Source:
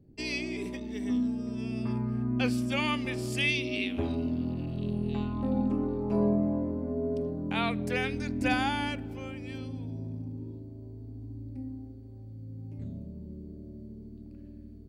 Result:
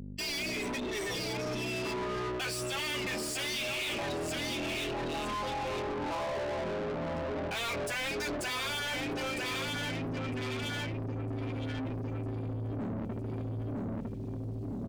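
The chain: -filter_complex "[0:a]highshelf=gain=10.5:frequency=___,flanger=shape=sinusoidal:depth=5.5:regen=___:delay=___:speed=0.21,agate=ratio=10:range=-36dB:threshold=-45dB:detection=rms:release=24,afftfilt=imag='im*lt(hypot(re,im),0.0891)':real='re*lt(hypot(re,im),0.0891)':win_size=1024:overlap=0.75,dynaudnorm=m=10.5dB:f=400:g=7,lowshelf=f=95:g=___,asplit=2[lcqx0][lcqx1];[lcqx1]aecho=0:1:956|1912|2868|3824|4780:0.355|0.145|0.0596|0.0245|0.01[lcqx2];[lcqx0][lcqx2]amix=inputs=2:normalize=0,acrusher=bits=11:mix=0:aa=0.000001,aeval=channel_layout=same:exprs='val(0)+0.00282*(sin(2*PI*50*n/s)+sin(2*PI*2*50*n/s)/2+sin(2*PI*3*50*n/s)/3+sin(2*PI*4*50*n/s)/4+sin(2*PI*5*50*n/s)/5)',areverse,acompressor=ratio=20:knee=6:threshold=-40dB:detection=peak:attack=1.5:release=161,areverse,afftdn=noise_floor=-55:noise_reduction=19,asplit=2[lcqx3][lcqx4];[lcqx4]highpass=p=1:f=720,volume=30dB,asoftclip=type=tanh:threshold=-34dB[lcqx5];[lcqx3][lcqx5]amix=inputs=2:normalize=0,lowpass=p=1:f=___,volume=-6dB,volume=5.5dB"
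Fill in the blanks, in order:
6700, 14, 5.9, 4.5, 7300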